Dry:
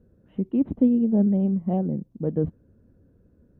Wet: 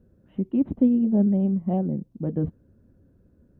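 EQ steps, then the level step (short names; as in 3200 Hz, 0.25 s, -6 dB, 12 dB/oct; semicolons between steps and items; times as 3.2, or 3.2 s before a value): notch 460 Hz, Q 12; 0.0 dB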